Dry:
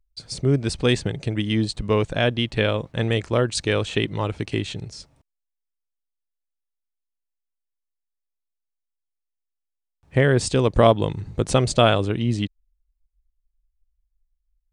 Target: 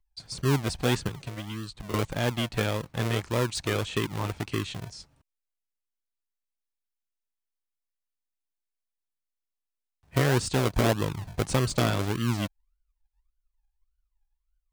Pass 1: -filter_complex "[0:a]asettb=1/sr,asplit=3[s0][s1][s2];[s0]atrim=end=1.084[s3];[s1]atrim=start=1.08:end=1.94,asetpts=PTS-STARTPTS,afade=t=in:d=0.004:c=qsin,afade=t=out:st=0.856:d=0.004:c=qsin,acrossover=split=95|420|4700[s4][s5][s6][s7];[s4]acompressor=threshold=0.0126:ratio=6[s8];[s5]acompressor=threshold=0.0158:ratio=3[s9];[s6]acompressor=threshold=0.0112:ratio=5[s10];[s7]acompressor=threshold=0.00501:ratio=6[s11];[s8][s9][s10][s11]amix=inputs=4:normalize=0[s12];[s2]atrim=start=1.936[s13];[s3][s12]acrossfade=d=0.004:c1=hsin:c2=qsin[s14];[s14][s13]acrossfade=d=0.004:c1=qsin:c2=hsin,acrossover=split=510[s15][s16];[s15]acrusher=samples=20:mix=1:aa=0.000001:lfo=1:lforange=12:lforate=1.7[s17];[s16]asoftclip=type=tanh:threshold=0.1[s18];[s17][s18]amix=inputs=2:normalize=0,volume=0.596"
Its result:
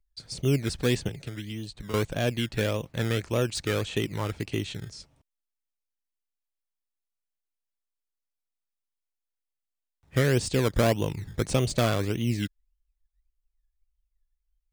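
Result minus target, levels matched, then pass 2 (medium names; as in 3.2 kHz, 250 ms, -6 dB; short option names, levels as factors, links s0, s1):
decimation with a swept rate: distortion -7 dB
-filter_complex "[0:a]asettb=1/sr,asplit=3[s0][s1][s2];[s0]atrim=end=1.084[s3];[s1]atrim=start=1.08:end=1.94,asetpts=PTS-STARTPTS,afade=t=in:d=0.004:c=qsin,afade=t=out:st=0.856:d=0.004:c=qsin,acrossover=split=95|420|4700[s4][s5][s6][s7];[s4]acompressor=threshold=0.0126:ratio=6[s8];[s5]acompressor=threshold=0.0158:ratio=3[s9];[s6]acompressor=threshold=0.0112:ratio=5[s10];[s7]acompressor=threshold=0.00501:ratio=6[s11];[s8][s9][s10][s11]amix=inputs=4:normalize=0[s12];[s2]atrim=start=1.936[s13];[s3][s12]acrossfade=d=0.004:c1=hsin:c2=qsin[s14];[s14][s13]acrossfade=d=0.004:c1=qsin:c2=hsin,acrossover=split=510[s15][s16];[s15]acrusher=samples=42:mix=1:aa=0.000001:lfo=1:lforange=25.2:lforate=1.7[s17];[s16]asoftclip=type=tanh:threshold=0.1[s18];[s17][s18]amix=inputs=2:normalize=0,volume=0.596"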